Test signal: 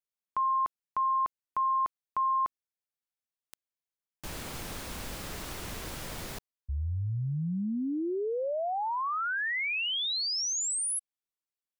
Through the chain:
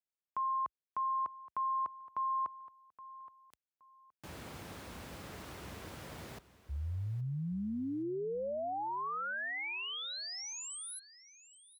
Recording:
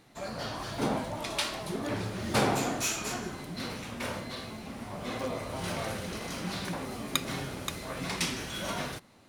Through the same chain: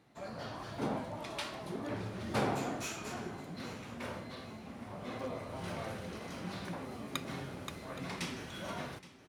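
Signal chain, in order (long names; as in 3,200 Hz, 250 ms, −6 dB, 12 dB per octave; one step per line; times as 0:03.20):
high-pass filter 58 Hz 24 dB per octave
high-shelf EQ 3,300 Hz −8.5 dB
repeating echo 821 ms, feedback 25%, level −17 dB
level −5.5 dB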